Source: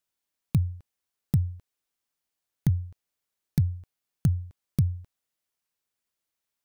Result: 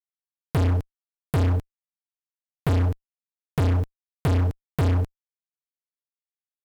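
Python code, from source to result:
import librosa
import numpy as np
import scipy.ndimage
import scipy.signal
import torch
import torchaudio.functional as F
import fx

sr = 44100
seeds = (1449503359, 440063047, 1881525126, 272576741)

y = scipy.signal.sosfilt(scipy.signal.butter(2, 42.0, 'highpass', fs=sr, output='sos'), x)
y = fx.low_shelf(y, sr, hz=64.0, db=7.0)
y = fx.hum_notches(y, sr, base_hz=60, count=3)
y = fx.fuzz(y, sr, gain_db=45.0, gate_db=-47.0)
y = y * 10.0 ** (-5.5 / 20.0)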